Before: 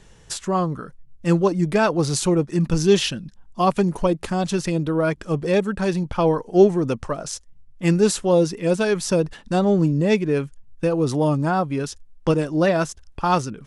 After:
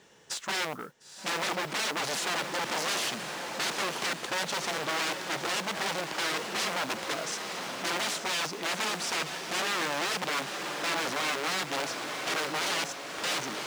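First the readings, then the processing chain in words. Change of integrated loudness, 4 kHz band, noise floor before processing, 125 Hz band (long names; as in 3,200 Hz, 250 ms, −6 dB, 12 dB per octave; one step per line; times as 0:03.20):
−9.5 dB, +2.0 dB, −49 dBFS, −24.0 dB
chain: wrap-around overflow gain 20 dB
band-pass filter 270–7,300 Hz
feedback delay with all-pass diffusion 952 ms, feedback 43%, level −6.5 dB
noise that follows the level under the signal 20 dB
saturating transformer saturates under 2,700 Hz
level −2.5 dB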